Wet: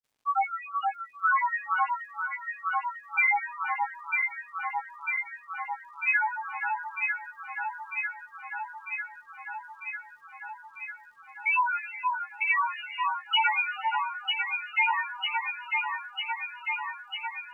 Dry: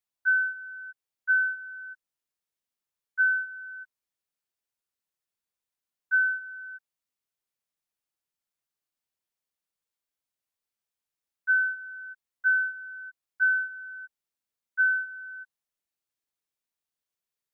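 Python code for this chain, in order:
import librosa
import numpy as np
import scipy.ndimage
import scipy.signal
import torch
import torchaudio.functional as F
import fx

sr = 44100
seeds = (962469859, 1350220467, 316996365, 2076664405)

p1 = fx.dmg_crackle(x, sr, seeds[0], per_s=270.0, level_db=-60.0)
p2 = fx.granulator(p1, sr, seeds[1], grain_ms=100.0, per_s=20.0, spray_ms=100.0, spread_st=12)
y = p2 + fx.echo_alternate(p2, sr, ms=474, hz=1500.0, feedback_pct=86, wet_db=-2.5, dry=0)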